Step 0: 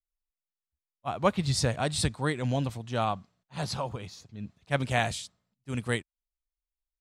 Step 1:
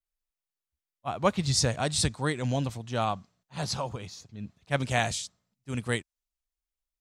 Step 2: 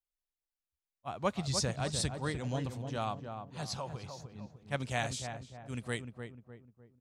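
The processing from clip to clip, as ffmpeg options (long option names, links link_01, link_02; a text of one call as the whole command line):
ffmpeg -i in.wav -af "adynamicequalizer=threshold=0.00282:dfrequency=6300:dqfactor=1.5:tfrequency=6300:tqfactor=1.5:attack=5:release=100:ratio=0.375:range=3.5:mode=boostabove:tftype=bell" out.wav
ffmpeg -i in.wav -filter_complex "[0:a]asplit=2[link_01][link_02];[link_02]adelay=302,lowpass=frequency=1200:poles=1,volume=-6dB,asplit=2[link_03][link_04];[link_04]adelay=302,lowpass=frequency=1200:poles=1,volume=0.44,asplit=2[link_05][link_06];[link_06]adelay=302,lowpass=frequency=1200:poles=1,volume=0.44,asplit=2[link_07][link_08];[link_08]adelay=302,lowpass=frequency=1200:poles=1,volume=0.44,asplit=2[link_09][link_10];[link_10]adelay=302,lowpass=frequency=1200:poles=1,volume=0.44[link_11];[link_01][link_03][link_05][link_07][link_09][link_11]amix=inputs=6:normalize=0,volume=-7.5dB" out.wav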